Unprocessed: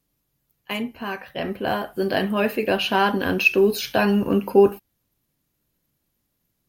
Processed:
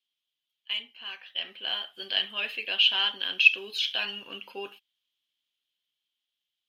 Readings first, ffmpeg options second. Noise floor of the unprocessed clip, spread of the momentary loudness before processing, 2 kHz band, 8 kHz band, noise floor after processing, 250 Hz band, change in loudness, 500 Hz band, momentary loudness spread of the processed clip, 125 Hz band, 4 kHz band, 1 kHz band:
-75 dBFS, 13 LU, -2.5 dB, under -10 dB, under -85 dBFS, -29.5 dB, -4.5 dB, -24.0 dB, 20 LU, under -30 dB, +6.0 dB, -17.5 dB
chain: -af "dynaudnorm=f=230:g=13:m=11.5dB,bandpass=f=3.2k:t=q:w=7.7:csg=0,volume=7.5dB"

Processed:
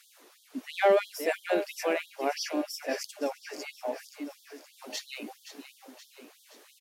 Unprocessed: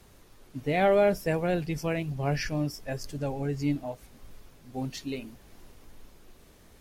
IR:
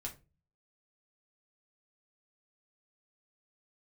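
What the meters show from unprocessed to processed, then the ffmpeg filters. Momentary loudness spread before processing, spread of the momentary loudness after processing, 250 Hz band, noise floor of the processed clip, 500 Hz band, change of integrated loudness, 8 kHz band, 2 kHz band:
16 LU, 22 LU, -6.0 dB, -61 dBFS, -1.0 dB, -2.5 dB, +4.0 dB, +0.5 dB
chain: -filter_complex "[0:a]aecho=1:1:522|1044|1566|2088|2610|3132:0.266|0.146|0.0805|0.0443|0.0243|0.0134,asplit=2[a][b];[b]asoftclip=type=tanh:threshold=-27.5dB,volume=-5dB[c];[a][c]amix=inputs=2:normalize=0,afftfilt=real='re*gte(b*sr/1024,210*pow(3200/210,0.5+0.5*sin(2*PI*3*pts/sr)))':imag='im*gte(b*sr/1024,210*pow(3200/210,0.5+0.5*sin(2*PI*3*pts/sr)))':win_size=1024:overlap=0.75"

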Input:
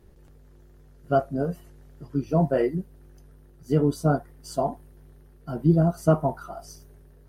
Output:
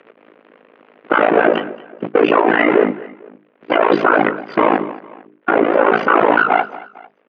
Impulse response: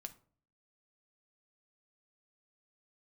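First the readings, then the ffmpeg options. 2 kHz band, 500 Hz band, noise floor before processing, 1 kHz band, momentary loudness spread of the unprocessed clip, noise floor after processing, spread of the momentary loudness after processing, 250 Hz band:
+26.5 dB, +11.5 dB, -53 dBFS, +16.5 dB, 18 LU, -57 dBFS, 15 LU, +7.0 dB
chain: -filter_complex "[0:a]aeval=exprs='val(0)+0.5*0.0282*sgn(val(0))':c=same,agate=range=-59dB:threshold=-32dB:ratio=16:detection=peak,bandreject=f=50:t=h:w=6,bandreject=f=100:t=h:w=6,bandreject=f=150:t=h:w=6,bandreject=f=200:t=h:w=6,bandreject=f=250:t=h:w=6,bandreject=f=300:t=h:w=6,bandreject=f=350:t=h:w=6,afftdn=nr=13:nf=-45,afftfilt=real='re*lt(hypot(re,im),0.224)':imag='im*lt(hypot(re,im),0.224)':win_size=1024:overlap=0.75,equalizer=f=780:w=2.2:g=-4.5,asplit=2[a][b];[b]acompressor=threshold=-42dB:ratio=16,volume=2.5dB[c];[a][c]amix=inputs=2:normalize=0,highpass=f=210:t=q:w=0.5412,highpass=f=210:t=q:w=1.307,lowpass=f=2.8k:t=q:w=0.5176,lowpass=f=2.8k:t=q:w=0.7071,lowpass=f=2.8k:t=q:w=1.932,afreqshift=54,tremolo=f=55:d=0.947,asplit=2[d][e];[e]aecho=0:1:225|450:0.1|0.03[f];[d][f]amix=inputs=2:normalize=0,acompressor=mode=upward:threshold=-54dB:ratio=2.5,alimiter=level_in=29dB:limit=-1dB:release=50:level=0:latency=1,volume=-1dB"

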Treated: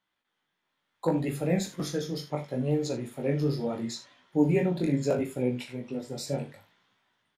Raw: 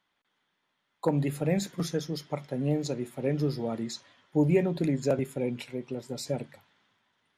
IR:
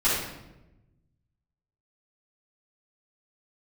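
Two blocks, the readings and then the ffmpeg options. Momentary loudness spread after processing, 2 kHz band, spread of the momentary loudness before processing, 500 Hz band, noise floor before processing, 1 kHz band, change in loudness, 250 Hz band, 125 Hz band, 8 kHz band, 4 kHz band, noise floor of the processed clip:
10 LU, +1.0 dB, 11 LU, +0.5 dB, -78 dBFS, +0.5 dB, +0.5 dB, +1.0 dB, 0.0 dB, +0.5 dB, +0.5 dB, -81 dBFS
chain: -filter_complex "[0:a]dynaudnorm=f=510:g=3:m=5dB,flanger=delay=15.5:depth=6.9:speed=0.72,asplit=2[a][b];[b]aecho=0:1:40|77:0.316|0.178[c];[a][c]amix=inputs=2:normalize=0,volume=-2dB"

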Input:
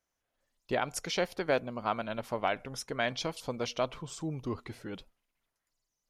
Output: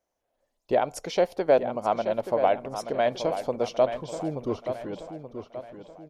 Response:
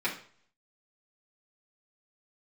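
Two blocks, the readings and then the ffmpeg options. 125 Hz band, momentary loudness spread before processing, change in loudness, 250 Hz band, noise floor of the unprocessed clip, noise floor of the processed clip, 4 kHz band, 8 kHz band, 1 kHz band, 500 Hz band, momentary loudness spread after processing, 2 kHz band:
+1.5 dB, 9 LU, +7.5 dB, +5.0 dB, -85 dBFS, -80 dBFS, -1.5 dB, -2.0 dB, +7.5 dB, +10.0 dB, 16 LU, -1.5 dB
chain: -filter_complex "[0:a]firequalizer=gain_entry='entry(120,0);entry(300,5);entry(610,11);entry(1300,-2)':delay=0.05:min_phase=1,asplit=2[a][b];[b]adelay=879,lowpass=f=4.6k:p=1,volume=-9.5dB,asplit=2[c][d];[d]adelay=879,lowpass=f=4.6k:p=1,volume=0.46,asplit=2[e][f];[f]adelay=879,lowpass=f=4.6k:p=1,volume=0.46,asplit=2[g][h];[h]adelay=879,lowpass=f=4.6k:p=1,volume=0.46,asplit=2[i][j];[j]adelay=879,lowpass=f=4.6k:p=1,volume=0.46[k];[c][e][g][i][k]amix=inputs=5:normalize=0[l];[a][l]amix=inputs=2:normalize=0"

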